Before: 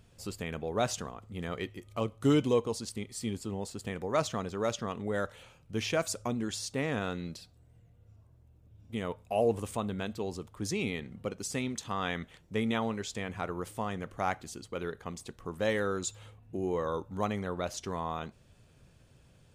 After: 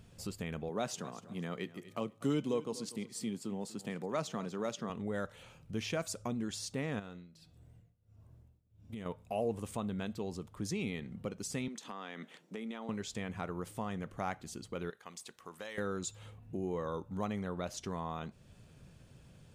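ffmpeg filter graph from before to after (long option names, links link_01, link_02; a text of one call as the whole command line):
ffmpeg -i in.wav -filter_complex "[0:a]asettb=1/sr,asplit=3[link_01][link_02][link_03];[link_01]atrim=end=0.694[link_04];[link_02]atrim=start=0.69:end=4.9,asetpts=PTS-STARTPTS,afade=type=in:duration=0.004:curve=qsin,afade=type=out:start_time=4.206:duration=0.004:curve=qsin,highpass=frequency=140:width=0.5412,highpass=frequency=140:width=1.3066,aecho=1:1:243|486:0.112|0.0269,atrim=end_sample=185661[link_05];[link_03]atrim=start=4.896[link_06];[link_04][link_05]acrossfade=duration=0.004:curve1=hsin:curve2=qsin[link_07];[link_07][link_06]acrossfade=duration=0.004:curve1=qsin:curve2=hsin,asettb=1/sr,asplit=3[link_08][link_09][link_10];[link_08]atrim=end=6.994[link_11];[link_09]atrim=start=6.99:end=9.06,asetpts=PTS-STARTPTS,afade=type=in:duration=0.004:curve=qsin,afade=type=out:start_time=2.066:duration=0.004:curve=qsin,bandreject=frequency=160.5:width_type=h:width=4,bandreject=frequency=321:width_type=h:width=4,bandreject=frequency=481.5:width_type=h:width=4,bandreject=frequency=642:width_type=h:width=4,bandreject=frequency=802.5:width_type=h:width=4,bandreject=frequency=963:width_type=h:width=4,bandreject=frequency=1123.5:width_type=h:width=4,bandreject=frequency=1284:width_type=h:width=4,bandreject=frequency=1444.5:width_type=h:width=4,bandreject=frequency=1605:width_type=h:width=4,bandreject=frequency=1765.5:width_type=h:width=4,bandreject=frequency=1926:width_type=h:width=4,bandreject=frequency=2086.5:width_type=h:width=4,bandreject=frequency=2247:width_type=h:width=4,bandreject=frequency=2407.5:width_type=h:width=4,bandreject=frequency=2568:width_type=h:width=4,bandreject=frequency=2728.5:width_type=h:width=4,bandreject=frequency=2889:width_type=h:width=4,bandreject=frequency=3049.5:width_type=h:width=4,bandreject=frequency=3210:width_type=h:width=4,bandreject=frequency=3370.5:width_type=h:width=4,bandreject=frequency=3531:width_type=h:width=4,acompressor=threshold=-38dB:ratio=12:attack=3.2:release=140:knee=1:detection=peak,tremolo=f=1.5:d=0.9[link_12];[link_10]atrim=start=9.056[link_13];[link_11][link_12]acrossfade=duration=0.004:curve1=hsin:curve2=qsin[link_14];[link_14][link_13]acrossfade=duration=0.004:curve1=qsin:curve2=hsin,asettb=1/sr,asplit=3[link_15][link_16][link_17];[link_15]atrim=end=11.684[link_18];[link_16]atrim=start=11.68:end=12.89,asetpts=PTS-STARTPTS,afade=type=in:duration=0.004:curve=qsin,afade=type=out:start_time=1.206:duration=0.004:curve=qsin,highpass=frequency=220:width=0.5412,highpass=frequency=220:width=1.3066,highshelf=frequency=12000:gain=-6,acompressor=threshold=-38dB:ratio=4:attack=3.2:release=140:knee=1:detection=peak[link_19];[link_17]atrim=start=12.886[link_20];[link_18][link_19]acrossfade=duration=0.004:curve1=hsin:curve2=qsin[link_21];[link_21][link_20]acrossfade=duration=0.004:curve1=qsin:curve2=hsin,asettb=1/sr,asplit=3[link_22][link_23][link_24];[link_22]atrim=end=14.904[link_25];[link_23]atrim=start=14.9:end=15.78,asetpts=PTS-STARTPTS,afade=type=in:duration=0.004:curve=qsin,afade=type=out:start_time=0.876:duration=0.004:curve=qsin,highpass=frequency=1400:poles=1,acompressor=threshold=-39dB:ratio=4:attack=3.2:release=140:knee=1:detection=peak[link_26];[link_24]atrim=start=15.776[link_27];[link_25][link_26]acrossfade=duration=0.004:curve1=hsin:curve2=qsin[link_28];[link_28][link_27]acrossfade=duration=0.004:curve1=qsin:curve2=hsin,equalizer=frequency=180:width=1.5:gain=5,acompressor=threshold=-47dB:ratio=1.5,volume=1dB" out.wav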